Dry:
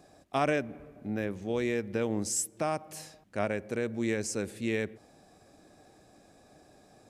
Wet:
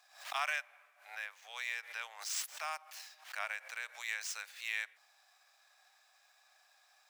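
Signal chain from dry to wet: median filter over 5 samples; Bessel high-pass 1.5 kHz, order 8; swell ahead of each attack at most 120 dB/s; trim +2 dB

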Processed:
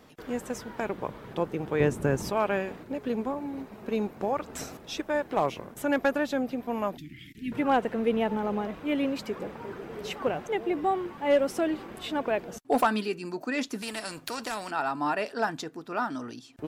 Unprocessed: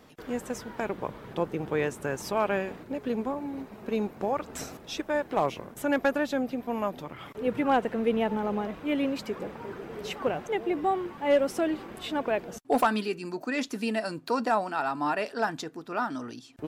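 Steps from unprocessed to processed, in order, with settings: 1.80–2.30 s: bass shelf 410 Hz +11.5 dB; 6.97–7.52 s: Chebyshev band-stop 320–1900 Hz, order 4; 13.82–14.71 s: spectrum-flattening compressor 2:1

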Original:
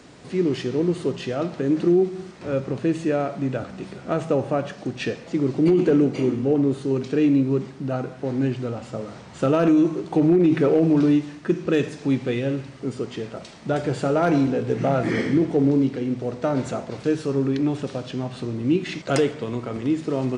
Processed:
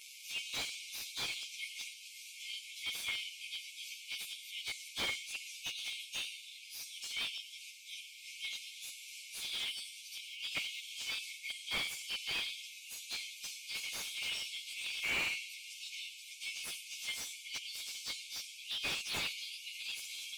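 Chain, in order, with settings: frequency axis rescaled in octaves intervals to 111%; brick-wall FIR high-pass 2.1 kHz; slew-rate limiter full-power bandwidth 26 Hz; trim +7.5 dB

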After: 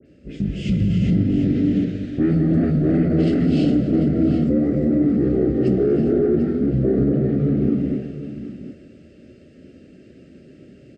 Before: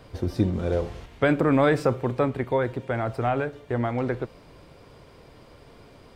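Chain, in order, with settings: gated-style reverb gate 250 ms rising, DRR -1 dB; wide varispeed 0.561×; high-pass 110 Hz 12 dB/octave; resonant low shelf 650 Hz +8 dB, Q 1.5; saturation -6.5 dBFS, distortion -14 dB; Butterworth band-stop 960 Hz, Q 1.2; phase dispersion highs, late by 63 ms, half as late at 2.7 kHz; peak limiter -14 dBFS, peak gain reduction 9.5 dB; on a send: multi-tap echo 245/744 ms -14.5/-9 dB; on the sum: dynamic bell 3 kHz, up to +5 dB, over -48 dBFS, Q 0.75; three bands expanded up and down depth 40%; trim +2 dB

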